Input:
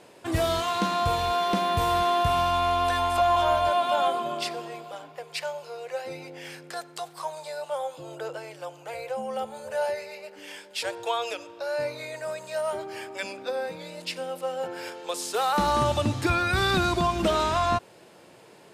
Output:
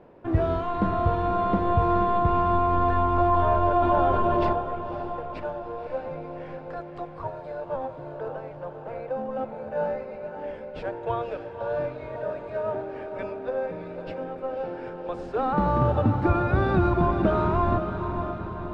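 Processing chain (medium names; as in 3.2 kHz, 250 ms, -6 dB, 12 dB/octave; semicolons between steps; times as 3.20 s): in parallel at -9 dB: sample-and-hold 42×; on the sum: low-pass 1.2 kHz 12 dB/octave; bass shelf 140 Hz +4 dB; echo that smears into a reverb 559 ms, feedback 59%, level -7.5 dB; 3.82–4.53 s: level flattener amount 70%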